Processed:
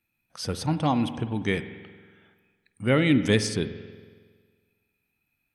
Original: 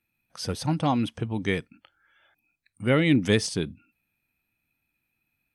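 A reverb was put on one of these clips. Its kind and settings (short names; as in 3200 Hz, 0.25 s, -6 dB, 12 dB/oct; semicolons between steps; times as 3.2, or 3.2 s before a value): spring tank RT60 1.6 s, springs 46 ms, chirp 75 ms, DRR 11 dB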